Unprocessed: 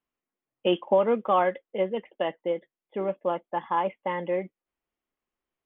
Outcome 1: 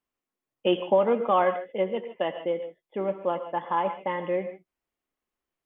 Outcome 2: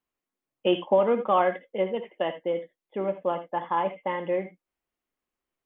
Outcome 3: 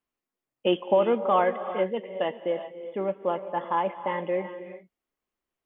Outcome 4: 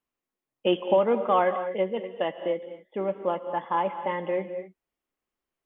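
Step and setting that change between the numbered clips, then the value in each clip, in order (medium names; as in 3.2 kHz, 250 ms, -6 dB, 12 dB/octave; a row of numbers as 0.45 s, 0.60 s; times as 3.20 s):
gated-style reverb, gate: 170 ms, 100 ms, 420 ms, 270 ms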